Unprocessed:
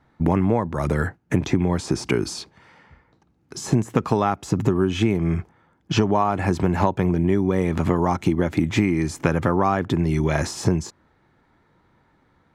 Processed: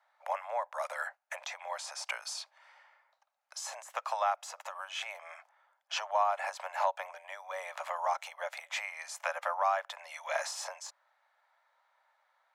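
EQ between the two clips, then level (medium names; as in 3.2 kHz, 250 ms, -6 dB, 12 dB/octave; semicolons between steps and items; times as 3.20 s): steep high-pass 560 Hz 96 dB/octave; -7.0 dB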